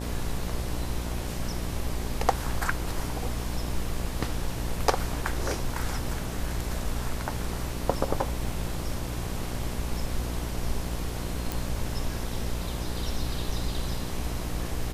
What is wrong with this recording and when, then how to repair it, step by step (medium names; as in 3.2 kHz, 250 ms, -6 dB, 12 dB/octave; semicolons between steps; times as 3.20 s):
buzz 60 Hz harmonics 19 -34 dBFS
11.52 s: pop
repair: de-click; de-hum 60 Hz, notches 19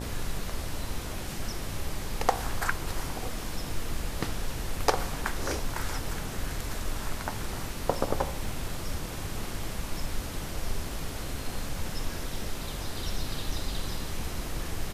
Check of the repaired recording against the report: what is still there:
nothing left